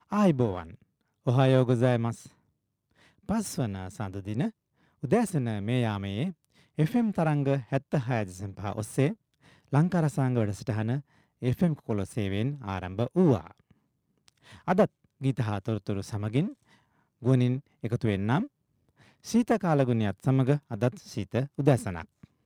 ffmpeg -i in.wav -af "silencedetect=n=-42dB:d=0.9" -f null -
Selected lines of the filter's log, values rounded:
silence_start: 2.28
silence_end: 3.29 | silence_duration: 1.01